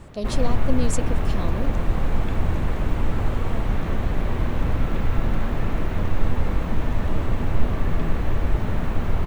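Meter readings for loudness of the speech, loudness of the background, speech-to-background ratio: -30.5 LUFS, -26.5 LUFS, -4.0 dB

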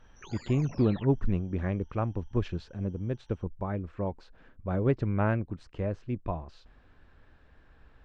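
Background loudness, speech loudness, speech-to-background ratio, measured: -47.5 LUFS, -31.5 LUFS, 16.0 dB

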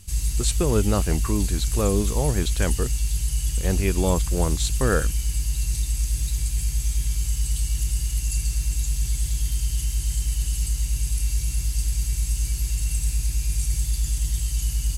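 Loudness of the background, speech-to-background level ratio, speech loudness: -26.0 LUFS, 0.0 dB, -26.0 LUFS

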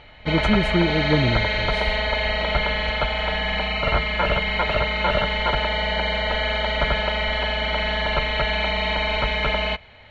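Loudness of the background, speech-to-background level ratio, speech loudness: -22.0 LUFS, -1.5 dB, -23.5 LUFS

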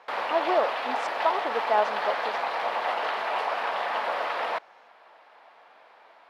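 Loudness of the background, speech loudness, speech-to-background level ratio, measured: -29.0 LUFS, -28.0 LUFS, 1.0 dB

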